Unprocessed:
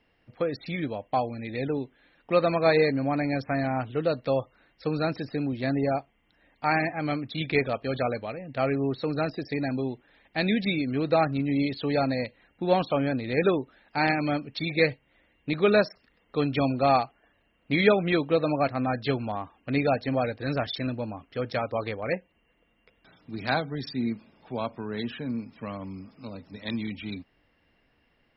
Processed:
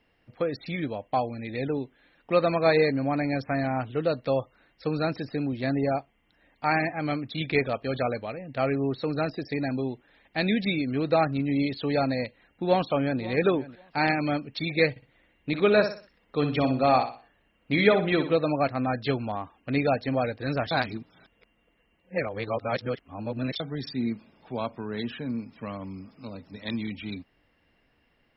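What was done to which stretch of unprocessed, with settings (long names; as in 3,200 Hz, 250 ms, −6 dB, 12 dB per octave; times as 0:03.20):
0:12.16–0:13.21: delay throw 540 ms, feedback 15%, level −16.5 dB
0:14.90–0:18.35: repeating echo 61 ms, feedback 34%, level −9 dB
0:20.71–0:23.60: reverse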